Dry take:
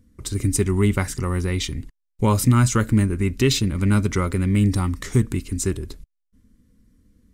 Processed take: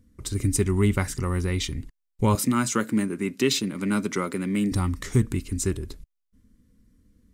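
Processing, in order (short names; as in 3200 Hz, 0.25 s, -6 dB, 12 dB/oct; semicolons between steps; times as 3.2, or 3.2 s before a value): 2.35–4.72 HPF 180 Hz 24 dB/oct; gain -2.5 dB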